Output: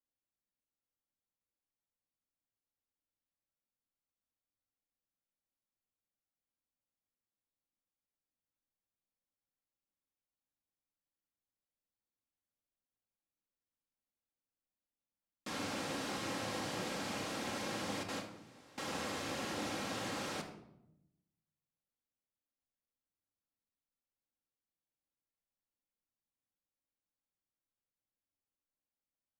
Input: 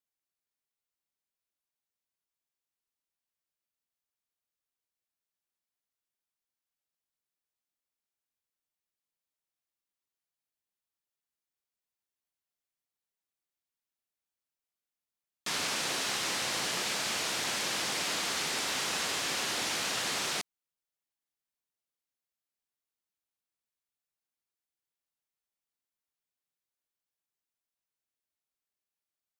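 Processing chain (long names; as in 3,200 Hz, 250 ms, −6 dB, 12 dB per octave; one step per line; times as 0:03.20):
0:18.03–0:18.78: noise gate with hold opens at −21 dBFS
tilt shelving filter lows +7.5 dB, about 1,100 Hz
convolution reverb RT60 0.80 s, pre-delay 4 ms, DRR 2.5 dB
level −7.5 dB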